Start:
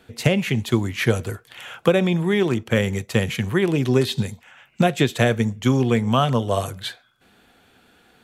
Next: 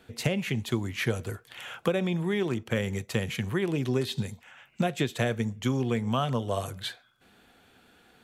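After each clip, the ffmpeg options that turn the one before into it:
ffmpeg -i in.wav -af "acompressor=threshold=-29dB:ratio=1.5,volume=-3.5dB" out.wav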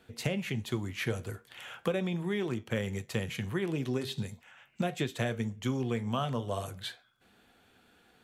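ffmpeg -i in.wav -af "flanger=delay=8.7:depth=3.3:regen=-77:speed=0.4:shape=triangular" out.wav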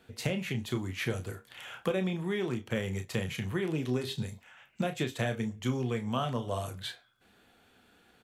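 ffmpeg -i in.wav -filter_complex "[0:a]asplit=2[link_01][link_02];[link_02]adelay=32,volume=-8.5dB[link_03];[link_01][link_03]amix=inputs=2:normalize=0" out.wav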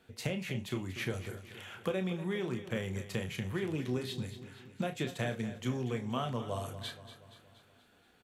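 ffmpeg -i in.wav -af "aecho=1:1:237|474|711|948|1185|1422:0.224|0.123|0.0677|0.0372|0.0205|0.0113,volume=-3.5dB" out.wav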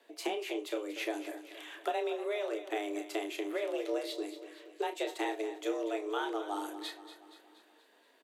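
ffmpeg -i in.wav -af "afreqshift=210" out.wav

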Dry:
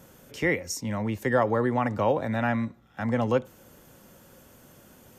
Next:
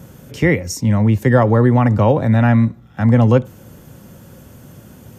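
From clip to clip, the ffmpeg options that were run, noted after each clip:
ffmpeg -i in.wav -af "equalizer=frequency=110:width_type=o:width=2.4:gain=12.5,volume=6.5dB" out.wav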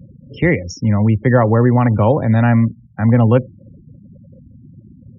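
ffmpeg -i in.wav -af "lowpass=frequency=5500:width=0.5412,lowpass=frequency=5500:width=1.3066,afftfilt=real='re*gte(hypot(re,im),0.0316)':imag='im*gte(hypot(re,im),0.0316)':win_size=1024:overlap=0.75" out.wav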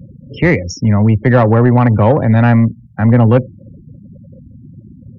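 ffmpeg -i in.wav -af "acontrast=45,volume=-1dB" out.wav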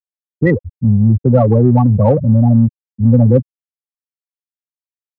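ffmpeg -i in.wav -filter_complex "[0:a]afftfilt=real='re*gte(hypot(re,im),1)':imag='im*gte(hypot(re,im),1)':win_size=1024:overlap=0.75,asplit=2[link_01][link_02];[link_02]asoftclip=type=tanh:threshold=-14.5dB,volume=-11dB[link_03];[link_01][link_03]amix=inputs=2:normalize=0,volume=-1dB" out.wav

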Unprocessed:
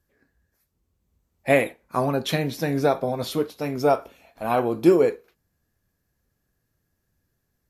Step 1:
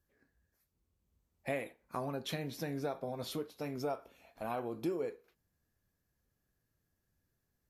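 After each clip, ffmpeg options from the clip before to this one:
ffmpeg -i in.wav -af "acompressor=threshold=-31dB:ratio=2.5,volume=-7.5dB" out.wav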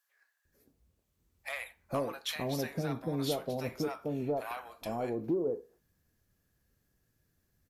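ffmpeg -i in.wav -filter_complex "[0:a]asoftclip=type=tanh:threshold=-28.5dB,acrossover=split=840[link_01][link_02];[link_01]adelay=450[link_03];[link_03][link_02]amix=inputs=2:normalize=0,volume=6.5dB" out.wav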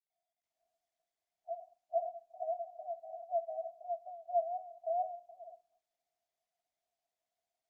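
ffmpeg -i in.wav -af "asuperpass=centerf=690:order=8:qfactor=7.2,volume=7.5dB" -ar 48000 -c:a libopus -b:a 48k out.opus

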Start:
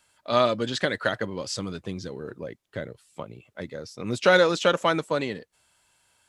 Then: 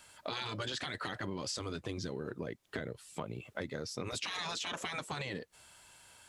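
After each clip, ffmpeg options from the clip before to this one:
ffmpeg -i in.wav -af "afftfilt=real='re*lt(hypot(re,im),0.158)':imag='im*lt(hypot(re,im),0.158)':win_size=1024:overlap=0.75,alimiter=level_in=1.5dB:limit=-24dB:level=0:latency=1:release=30,volume=-1.5dB,acompressor=threshold=-43dB:ratio=6,volume=7dB" out.wav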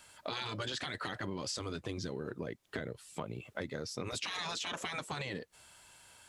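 ffmpeg -i in.wav -af anull out.wav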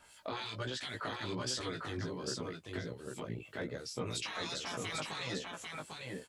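ffmpeg -i in.wav -filter_complex "[0:a]acrossover=split=2000[link_01][link_02];[link_01]aeval=exprs='val(0)*(1-0.7/2+0.7/2*cos(2*PI*3*n/s))':channel_layout=same[link_03];[link_02]aeval=exprs='val(0)*(1-0.7/2-0.7/2*cos(2*PI*3*n/s))':channel_layout=same[link_04];[link_03][link_04]amix=inputs=2:normalize=0,flanger=delay=15.5:depth=3.8:speed=1.3,aecho=1:1:797:0.668,volume=4.5dB" out.wav

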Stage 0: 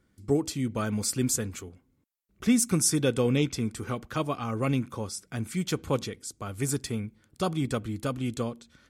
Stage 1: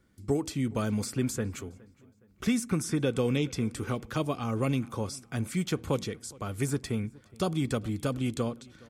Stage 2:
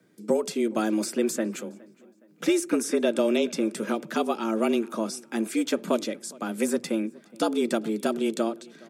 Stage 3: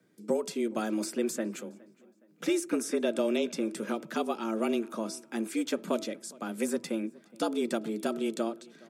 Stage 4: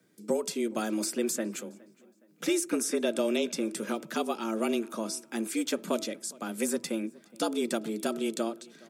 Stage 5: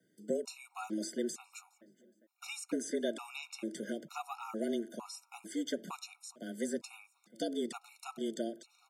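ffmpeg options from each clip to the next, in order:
ffmpeg -i in.wav -filter_complex "[0:a]acrossover=split=740|2800[link_01][link_02][link_03];[link_01]acompressor=threshold=-26dB:ratio=4[link_04];[link_02]acompressor=threshold=-40dB:ratio=4[link_05];[link_03]acompressor=threshold=-41dB:ratio=4[link_06];[link_04][link_05][link_06]amix=inputs=3:normalize=0,asplit=2[link_07][link_08];[link_08]adelay=416,lowpass=frequency=3900:poles=1,volume=-23.5dB,asplit=2[link_09][link_10];[link_10]adelay=416,lowpass=frequency=3900:poles=1,volume=0.43,asplit=2[link_11][link_12];[link_12]adelay=416,lowpass=frequency=3900:poles=1,volume=0.43[link_13];[link_07][link_09][link_11][link_13]amix=inputs=4:normalize=0,volume=1.5dB" out.wav
ffmpeg -i in.wav -af "afreqshift=110,volume=4dB" out.wav
ffmpeg -i in.wav -af "bandreject=frequency=325.1:width_type=h:width=4,bandreject=frequency=650.2:width_type=h:width=4,bandreject=frequency=975.3:width_type=h:width=4,bandreject=frequency=1300.4:width_type=h:width=4,volume=-5dB" out.wav
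ffmpeg -i in.wav -af "highshelf=frequency=3700:gain=7" out.wav
ffmpeg -i in.wav -filter_complex "[0:a]acrossover=split=8900[link_01][link_02];[link_02]acompressor=threshold=-52dB:ratio=4:attack=1:release=60[link_03];[link_01][link_03]amix=inputs=2:normalize=0,afftfilt=real='re*gt(sin(2*PI*1.1*pts/sr)*(1-2*mod(floor(b*sr/1024/730),2)),0)':imag='im*gt(sin(2*PI*1.1*pts/sr)*(1-2*mod(floor(b*sr/1024/730),2)),0)':win_size=1024:overlap=0.75,volume=-5.5dB" out.wav

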